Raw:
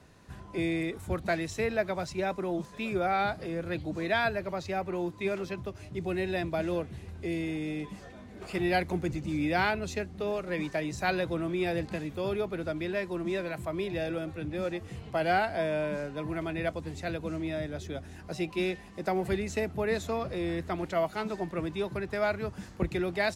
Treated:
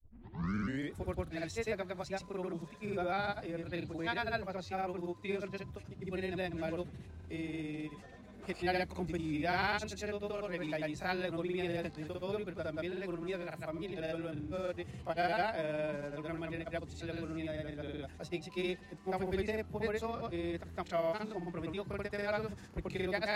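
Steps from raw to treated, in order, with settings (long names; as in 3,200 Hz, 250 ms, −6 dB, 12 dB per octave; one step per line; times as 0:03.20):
turntable start at the beginning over 0.95 s
dynamic equaliser 4,100 Hz, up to +4 dB, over −57 dBFS, Q 5.2
granular cloud, pitch spread up and down by 0 semitones
level −5 dB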